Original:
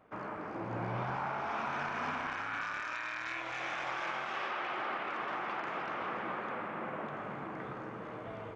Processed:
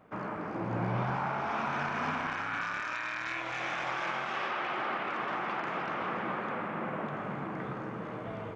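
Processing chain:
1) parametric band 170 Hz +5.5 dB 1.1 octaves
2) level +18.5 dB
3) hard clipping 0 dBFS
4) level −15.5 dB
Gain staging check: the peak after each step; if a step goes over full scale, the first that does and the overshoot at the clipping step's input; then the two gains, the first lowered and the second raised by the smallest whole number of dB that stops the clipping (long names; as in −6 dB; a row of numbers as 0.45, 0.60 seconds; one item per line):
−24.0, −5.5, −5.5, −21.0 dBFS
no step passes full scale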